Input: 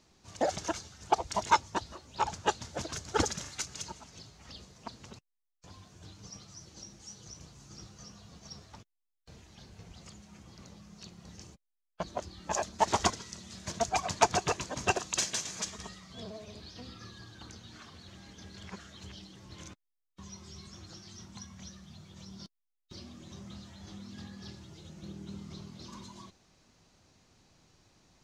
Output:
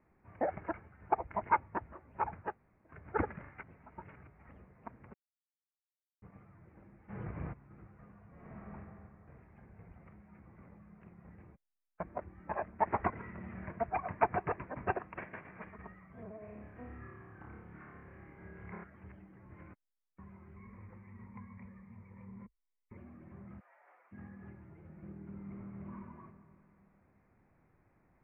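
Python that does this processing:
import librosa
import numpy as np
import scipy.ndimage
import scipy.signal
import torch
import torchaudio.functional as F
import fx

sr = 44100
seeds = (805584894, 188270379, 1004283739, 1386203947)

y = fx.env_flatten(x, sr, amount_pct=50, at=(7.08, 7.52), fade=0.02)
y = fx.reverb_throw(y, sr, start_s=8.31, length_s=0.42, rt60_s=2.6, drr_db=-9.0)
y = fx.env_flatten(y, sr, amount_pct=70, at=(13.15, 13.71))
y = fx.room_flutter(y, sr, wall_m=4.9, rt60_s=0.8, at=(16.39, 18.84))
y = fx.ripple_eq(y, sr, per_octave=0.92, db=13, at=(20.56, 22.97))
y = fx.steep_highpass(y, sr, hz=540.0, slope=36, at=(23.59, 24.11), fade=0.02)
y = fx.reverb_throw(y, sr, start_s=25.3, length_s=0.65, rt60_s=2.4, drr_db=0.5)
y = fx.edit(y, sr, fx.room_tone_fill(start_s=2.48, length_s=0.48, crossfade_s=0.24),
    fx.reverse_span(start_s=3.63, length_s=0.64),
    fx.silence(start_s=5.14, length_s=1.08), tone=tone)
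y = scipy.signal.sosfilt(scipy.signal.butter(12, 2300.0, 'lowpass', fs=sr, output='sos'), y)
y = F.gain(torch.from_numpy(y), -4.0).numpy()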